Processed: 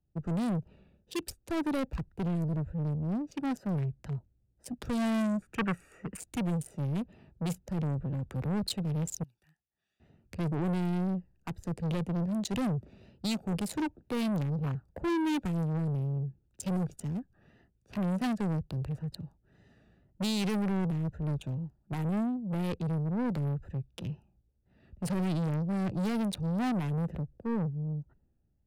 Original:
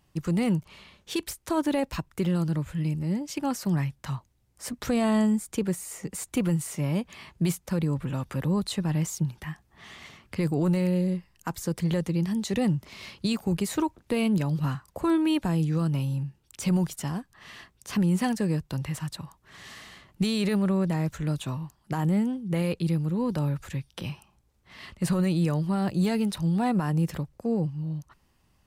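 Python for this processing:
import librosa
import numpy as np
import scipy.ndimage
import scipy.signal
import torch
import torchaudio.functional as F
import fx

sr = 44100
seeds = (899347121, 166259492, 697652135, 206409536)

y = fx.wiener(x, sr, points=41)
y = fx.vibrato(y, sr, rate_hz=2.0, depth_cents=52.0)
y = fx.pre_emphasis(y, sr, coefficient=0.97, at=(9.23, 10.0))
y = 10.0 ** (-30.5 / 20.0) * np.tanh(y / 10.0 ** (-30.5 / 20.0))
y = fx.band_shelf(y, sr, hz=1800.0, db=13.0, octaves=1.7, at=(5.42, 6.2))
y = fx.band_widen(y, sr, depth_pct=40)
y = F.gain(torch.from_numpy(y), 2.5).numpy()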